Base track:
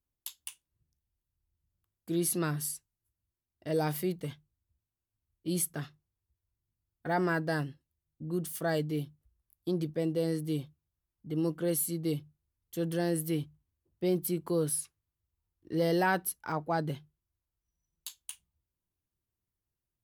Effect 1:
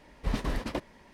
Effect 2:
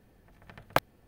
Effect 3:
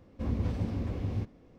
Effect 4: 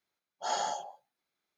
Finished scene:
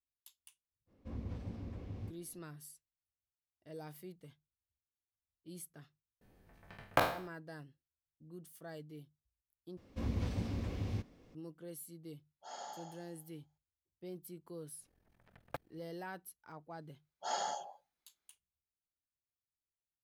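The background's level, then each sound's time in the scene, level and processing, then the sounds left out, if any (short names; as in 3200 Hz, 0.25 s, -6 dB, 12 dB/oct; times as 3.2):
base track -18 dB
0.86 add 3 -12 dB, fades 0.05 s
6.21 add 2 -6.5 dB + spectral trails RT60 0.49 s
9.77 replace with 3 -5.5 dB + high shelf 2100 Hz +10 dB
12.01 add 4 -17 dB + Schroeder reverb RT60 1.1 s, combs from 27 ms, DRR 1 dB
14.78 add 2 -11 dB, fades 0.05 s + ring modulator 21 Hz
16.81 add 4 -5 dB
not used: 1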